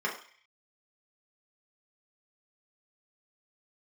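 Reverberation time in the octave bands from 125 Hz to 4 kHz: 0.30, 0.35, 0.40, 0.50, 0.75, 0.60 seconds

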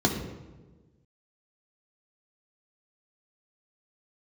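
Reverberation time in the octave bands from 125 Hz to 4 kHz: 1.7, 1.6, 1.5, 1.1, 0.90, 0.75 seconds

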